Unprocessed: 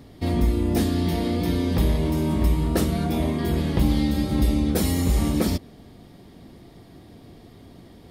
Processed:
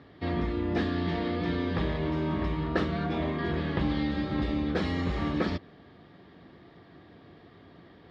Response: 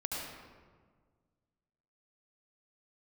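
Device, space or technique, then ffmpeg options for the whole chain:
guitar cabinet: -af "highpass=96,equalizer=f=120:t=q:w=4:g=-5,equalizer=f=230:t=q:w=4:g=-6,equalizer=f=1.2k:t=q:w=4:g=6,equalizer=f=1.7k:t=q:w=4:g=8,lowpass=f=4k:w=0.5412,lowpass=f=4k:w=1.3066,volume=-4dB"

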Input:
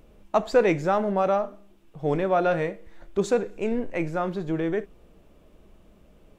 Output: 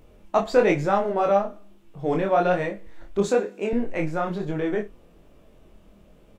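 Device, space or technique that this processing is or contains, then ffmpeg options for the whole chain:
double-tracked vocal: -filter_complex "[0:a]asplit=2[a][b];[b]adelay=29,volume=-11.5dB[c];[a][c]amix=inputs=2:normalize=0,flanger=delay=20:depth=5.2:speed=1.1,asettb=1/sr,asplit=3[d][e][f];[d]atrim=end=3.284[g];[e]atrim=start=3.28:end=3.73,asetpts=PTS-STARTPTS,afade=t=in:d=0.004:c=qsin,afade=t=out:st=0.446:d=0.004:c=qsin,highpass=f=190:w=0.5412,highpass=f=190:w=1.3066[h];[f]atrim=start=3.726[i];[g][h]acrossfade=d=0.004:c1=hsin:c2=qsin[j];[j][i]acrossfade=d=0.004:c1=qsin:c2=hsin,volume=4.5dB"

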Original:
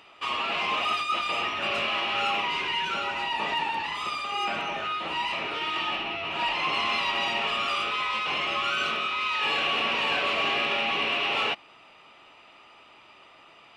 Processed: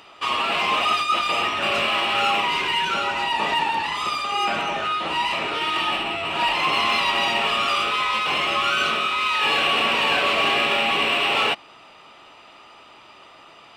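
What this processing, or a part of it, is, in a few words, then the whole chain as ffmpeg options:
exciter from parts: -filter_complex "[0:a]asplit=2[a][b];[b]highpass=f=2.2k:w=0.5412,highpass=f=2.2k:w=1.3066,asoftclip=type=tanh:threshold=-35.5dB,volume=-7dB[c];[a][c]amix=inputs=2:normalize=0,volume=6.5dB"

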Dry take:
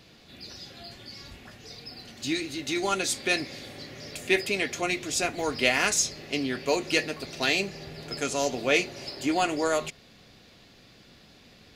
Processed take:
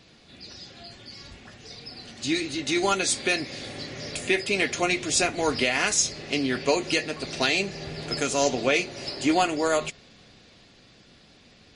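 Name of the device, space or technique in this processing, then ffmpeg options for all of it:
low-bitrate web radio: -af "dynaudnorm=f=240:g=21:m=10.5dB,alimiter=limit=-10dB:level=0:latency=1:release=376" -ar 32000 -c:a libmp3lame -b:a 40k

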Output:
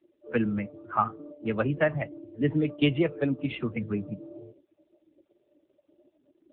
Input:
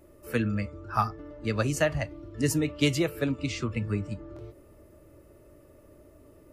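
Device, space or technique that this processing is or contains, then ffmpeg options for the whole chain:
mobile call with aggressive noise cancelling: -af "highpass=f=130:w=0.5412,highpass=f=130:w=1.3066,afftdn=nr=25:nf=-41,volume=2dB" -ar 8000 -c:a libopencore_amrnb -b:a 7950

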